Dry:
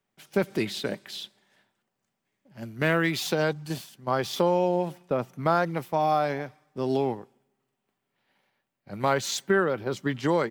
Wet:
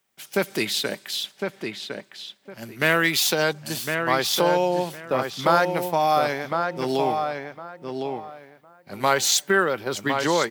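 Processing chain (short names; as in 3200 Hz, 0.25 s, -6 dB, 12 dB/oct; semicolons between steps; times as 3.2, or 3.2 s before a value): tilt +2.5 dB/oct; on a send: darkening echo 1.058 s, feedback 21%, low-pass 2900 Hz, level -5 dB; on the sum: gain +4.5 dB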